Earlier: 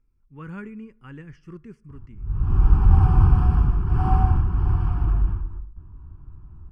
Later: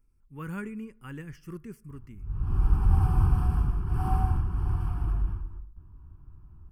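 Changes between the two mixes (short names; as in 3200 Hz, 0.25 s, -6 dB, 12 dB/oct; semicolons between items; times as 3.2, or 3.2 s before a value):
background -7.0 dB; master: remove air absorption 120 m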